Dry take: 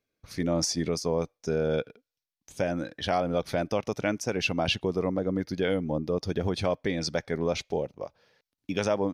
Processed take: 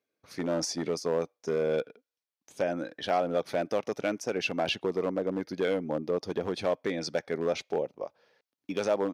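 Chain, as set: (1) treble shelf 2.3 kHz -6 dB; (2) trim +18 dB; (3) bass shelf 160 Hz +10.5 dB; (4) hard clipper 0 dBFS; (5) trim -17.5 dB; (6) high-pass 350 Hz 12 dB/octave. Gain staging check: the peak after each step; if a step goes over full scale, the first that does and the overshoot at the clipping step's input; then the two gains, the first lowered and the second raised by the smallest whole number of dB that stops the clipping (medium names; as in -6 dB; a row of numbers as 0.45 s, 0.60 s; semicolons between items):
-15.0 dBFS, +3.0 dBFS, +6.5 dBFS, 0.0 dBFS, -17.5 dBFS, -14.0 dBFS; step 2, 6.5 dB; step 2 +11 dB, step 5 -10.5 dB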